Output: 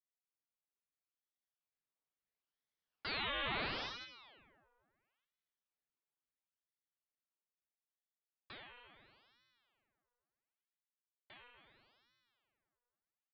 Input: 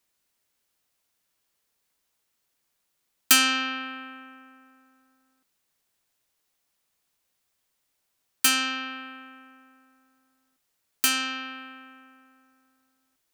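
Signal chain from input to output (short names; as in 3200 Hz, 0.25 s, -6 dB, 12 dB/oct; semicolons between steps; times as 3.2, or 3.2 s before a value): Doppler pass-by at 3.57, 27 m/s, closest 2.6 m; bell 720 Hz +10 dB 1 oct; echo 0.271 s -13 dB; tube stage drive 43 dB, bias 0.65; downsampling 8000 Hz; ring modulator with a swept carrier 1500 Hz, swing 85%, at 0.74 Hz; gain +9.5 dB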